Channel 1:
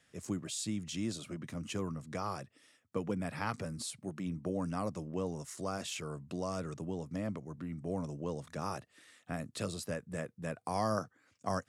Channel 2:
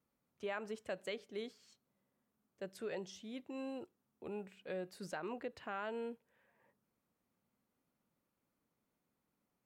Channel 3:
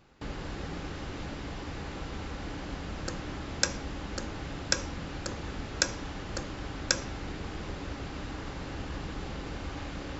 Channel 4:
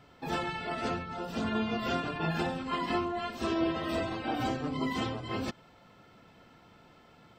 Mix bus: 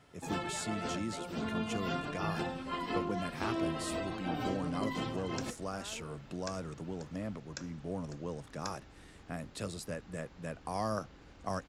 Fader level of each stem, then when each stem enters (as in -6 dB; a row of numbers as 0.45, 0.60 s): -2.0, -8.5, -18.0, -5.0 dB; 0.00, 0.05, 1.75, 0.00 s